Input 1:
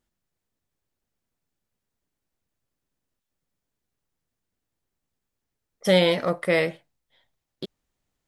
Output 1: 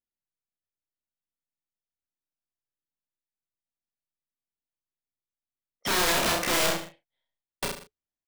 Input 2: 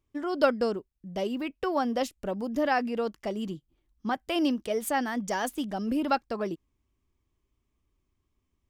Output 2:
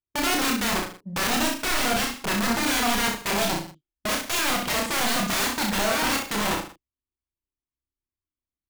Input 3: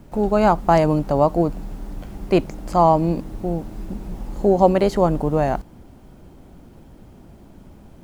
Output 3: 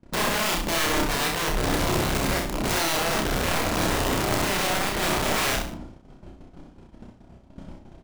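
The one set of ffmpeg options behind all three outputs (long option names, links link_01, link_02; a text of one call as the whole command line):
ffmpeg -i in.wav -filter_complex "[0:a]lowpass=6300,bandreject=frequency=430:width=12,agate=range=-31dB:threshold=-41dB:ratio=16:detection=peak,acrossover=split=4000[link_01][link_02];[link_02]acompressor=threshold=-50dB:ratio=4:attack=1:release=60[link_03];[link_01][link_03]amix=inputs=2:normalize=0,lowshelf=frequency=140:gain=-3,acompressor=threshold=-26dB:ratio=5,alimiter=level_in=0.5dB:limit=-24dB:level=0:latency=1:release=10,volume=-0.5dB,aeval=exprs='(mod(35.5*val(0)+1,2)-1)/35.5':channel_layout=same,asplit=2[link_04][link_05];[link_05]adelay=33,volume=-9.5dB[link_06];[link_04][link_06]amix=inputs=2:normalize=0,aecho=1:1:30|63|99.3|139.2|183.2:0.631|0.398|0.251|0.158|0.1,volume=9dB" out.wav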